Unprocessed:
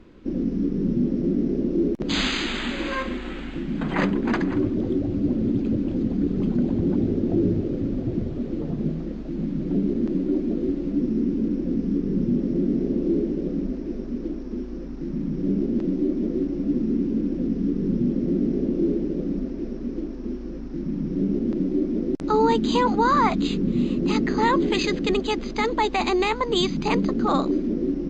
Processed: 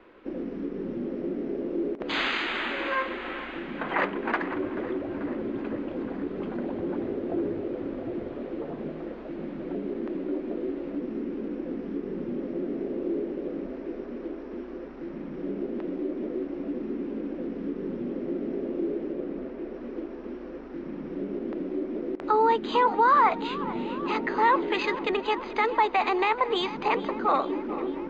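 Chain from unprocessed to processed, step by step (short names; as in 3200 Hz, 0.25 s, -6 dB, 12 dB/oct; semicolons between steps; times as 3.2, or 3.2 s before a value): three-band isolator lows -22 dB, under 420 Hz, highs -22 dB, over 3000 Hz; in parallel at -2 dB: compressor, threshold -36 dBFS, peak gain reduction 17 dB; 19.12–19.74 on the sum: air absorption 69 m; on a send: tape echo 0.436 s, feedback 84%, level -15 dB, low-pass 3600 Hz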